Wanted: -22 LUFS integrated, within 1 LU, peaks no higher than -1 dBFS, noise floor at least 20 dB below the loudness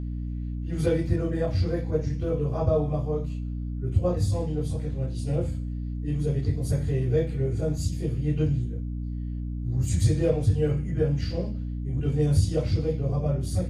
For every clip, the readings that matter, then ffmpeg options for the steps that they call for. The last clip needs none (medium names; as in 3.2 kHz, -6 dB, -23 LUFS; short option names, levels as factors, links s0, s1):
hum 60 Hz; highest harmonic 300 Hz; hum level -29 dBFS; loudness -27.0 LUFS; peak level -10.5 dBFS; loudness target -22.0 LUFS
-> -af "bandreject=f=60:t=h:w=4,bandreject=f=120:t=h:w=4,bandreject=f=180:t=h:w=4,bandreject=f=240:t=h:w=4,bandreject=f=300:t=h:w=4"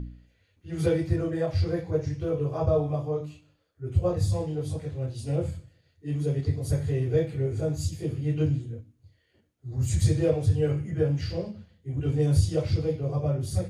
hum not found; loudness -27.5 LUFS; peak level -10.0 dBFS; loudness target -22.0 LUFS
-> -af "volume=1.88"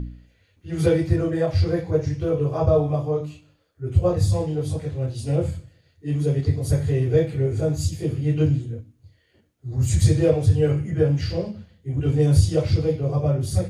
loudness -22.0 LUFS; peak level -4.5 dBFS; noise floor -63 dBFS